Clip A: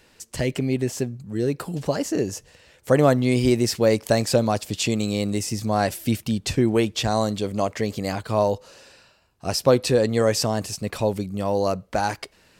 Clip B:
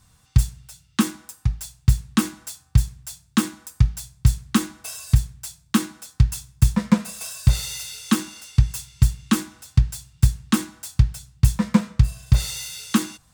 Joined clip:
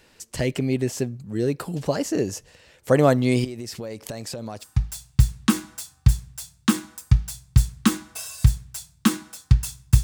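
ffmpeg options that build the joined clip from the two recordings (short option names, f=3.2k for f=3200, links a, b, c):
-filter_complex "[0:a]asettb=1/sr,asplit=3[a][b][c];[a]atrim=end=3.444[d];[b]atrim=start=3.44:end=4.66,asetpts=PTS-STARTPTS,afade=t=in:d=0.004:c=qsin,afade=t=out:st=1.216:d=0.004:c=qsin,acompressor=threshold=-29dB:ratio=16:attack=3.2:release=140:knee=1:detection=peak[e];[c]atrim=start=4.656[f];[d][e]acrossfade=d=0.004:c1=hsin:c2=qsin[g];[g][f]acrossfade=d=0.004:c1=qsin:c2=hsin,apad=whole_dur=10.03,atrim=end=10.03,atrim=end=4.66,asetpts=PTS-STARTPTS[h];[1:a]atrim=start=1.29:end=6.72,asetpts=PTS-STARTPTS[i];[h][i]acrossfade=d=0.06:c1=tri:c2=tri"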